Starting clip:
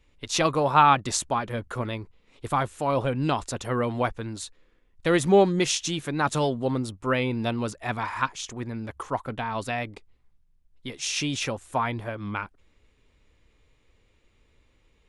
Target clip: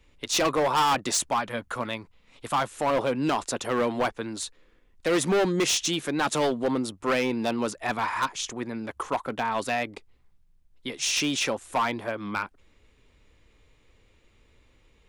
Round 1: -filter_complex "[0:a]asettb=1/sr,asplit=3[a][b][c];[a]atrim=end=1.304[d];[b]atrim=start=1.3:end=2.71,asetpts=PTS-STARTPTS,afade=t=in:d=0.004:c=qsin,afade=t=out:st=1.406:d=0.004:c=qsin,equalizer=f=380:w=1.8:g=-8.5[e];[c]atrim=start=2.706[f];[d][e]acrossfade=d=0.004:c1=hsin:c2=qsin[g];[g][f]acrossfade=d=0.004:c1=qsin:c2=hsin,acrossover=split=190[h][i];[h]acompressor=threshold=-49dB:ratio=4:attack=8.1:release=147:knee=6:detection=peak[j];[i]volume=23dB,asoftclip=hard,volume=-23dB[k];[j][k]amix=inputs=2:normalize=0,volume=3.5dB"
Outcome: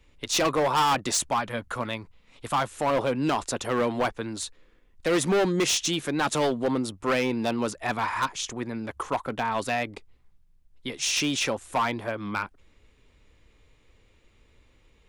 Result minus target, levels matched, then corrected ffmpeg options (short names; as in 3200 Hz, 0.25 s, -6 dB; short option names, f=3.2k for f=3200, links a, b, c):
compressor: peak gain reduction -6.5 dB
-filter_complex "[0:a]asettb=1/sr,asplit=3[a][b][c];[a]atrim=end=1.304[d];[b]atrim=start=1.3:end=2.71,asetpts=PTS-STARTPTS,afade=t=in:d=0.004:c=qsin,afade=t=out:st=1.406:d=0.004:c=qsin,equalizer=f=380:w=1.8:g=-8.5[e];[c]atrim=start=2.706[f];[d][e]acrossfade=d=0.004:c1=hsin:c2=qsin[g];[g][f]acrossfade=d=0.004:c1=qsin:c2=hsin,acrossover=split=190[h][i];[h]acompressor=threshold=-57.5dB:ratio=4:attack=8.1:release=147:knee=6:detection=peak[j];[i]volume=23dB,asoftclip=hard,volume=-23dB[k];[j][k]amix=inputs=2:normalize=0,volume=3.5dB"